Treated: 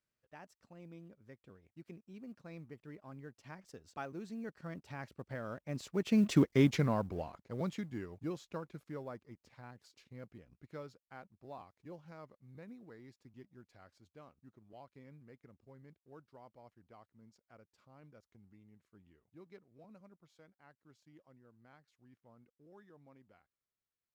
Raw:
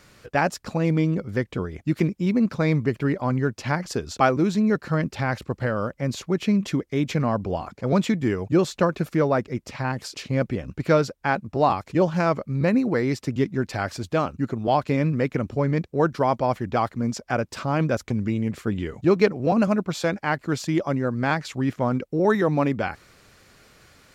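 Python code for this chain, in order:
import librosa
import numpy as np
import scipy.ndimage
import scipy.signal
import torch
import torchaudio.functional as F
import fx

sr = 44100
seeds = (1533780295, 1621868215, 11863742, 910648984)

y = fx.law_mismatch(x, sr, coded='A')
y = fx.doppler_pass(y, sr, speed_mps=19, closest_m=3.2, pass_at_s=6.48)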